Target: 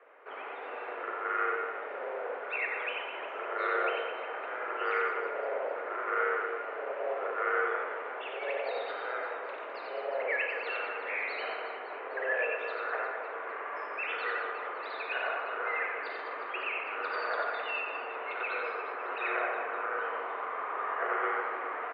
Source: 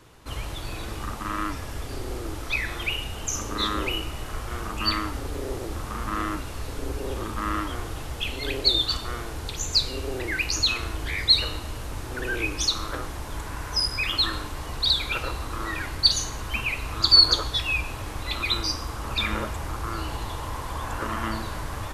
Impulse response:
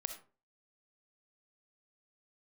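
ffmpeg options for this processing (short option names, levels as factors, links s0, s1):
-filter_complex "[0:a]acrusher=bits=4:mode=log:mix=0:aa=0.000001,highpass=f=240:t=q:w=0.5412,highpass=f=240:t=q:w=1.307,lowpass=f=2200:t=q:w=0.5176,lowpass=f=2200:t=q:w=0.7071,lowpass=f=2200:t=q:w=1.932,afreqshift=150,aecho=1:1:90|207|359.1|556.8|813.9:0.631|0.398|0.251|0.158|0.1[s0];[1:a]atrim=start_sample=2205,asetrate=48510,aresample=44100[s1];[s0][s1]afir=irnorm=-1:irlink=0"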